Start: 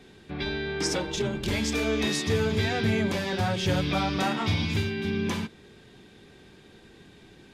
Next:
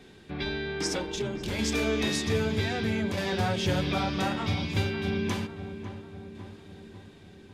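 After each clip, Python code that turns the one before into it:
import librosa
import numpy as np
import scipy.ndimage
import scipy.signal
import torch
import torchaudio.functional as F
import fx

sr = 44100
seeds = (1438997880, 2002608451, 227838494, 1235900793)

y = fx.tremolo_shape(x, sr, shape='saw_down', hz=0.63, depth_pct=45)
y = fx.echo_filtered(y, sr, ms=548, feedback_pct=61, hz=1600.0, wet_db=-10)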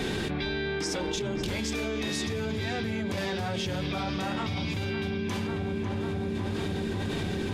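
y = fx.env_flatten(x, sr, amount_pct=100)
y = y * librosa.db_to_amplitude(-7.5)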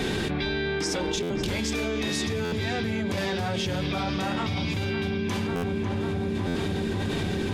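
y = fx.buffer_glitch(x, sr, at_s=(1.22, 2.44, 5.55, 6.47), block=512, repeats=6)
y = y * librosa.db_to_amplitude(3.0)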